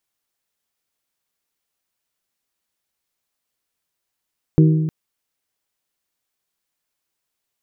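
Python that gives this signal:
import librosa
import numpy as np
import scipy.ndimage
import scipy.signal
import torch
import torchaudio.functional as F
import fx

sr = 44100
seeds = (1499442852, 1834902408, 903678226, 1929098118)

y = fx.strike_glass(sr, length_s=0.31, level_db=-8.0, body='bell', hz=157.0, decay_s=1.51, tilt_db=5.5, modes=4)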